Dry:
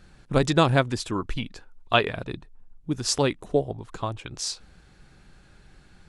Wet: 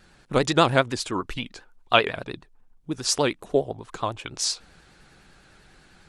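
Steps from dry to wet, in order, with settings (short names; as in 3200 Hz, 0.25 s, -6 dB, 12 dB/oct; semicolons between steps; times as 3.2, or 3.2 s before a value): low shelf 210 Hz -10 dB; in parallel at +1 dB: vocal rider 2 s; on the sum: vibrato 10 Hz 88 cents; gain -4.5 dB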